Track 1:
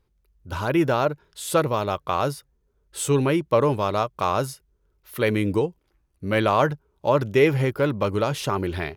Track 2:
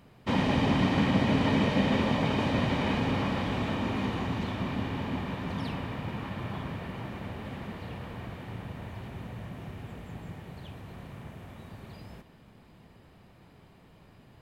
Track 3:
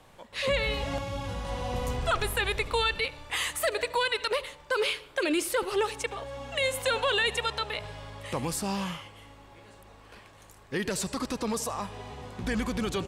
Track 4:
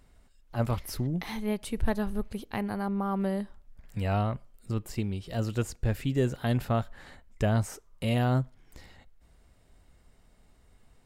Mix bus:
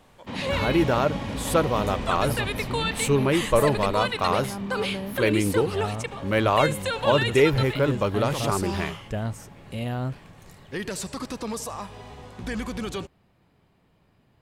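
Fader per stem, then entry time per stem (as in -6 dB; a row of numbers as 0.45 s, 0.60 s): -1.0 dB, -7.5 dB, -1.0 dB, -3.5 dB; 0.00 s, 0.00 s, 0.00 s, 1.70 s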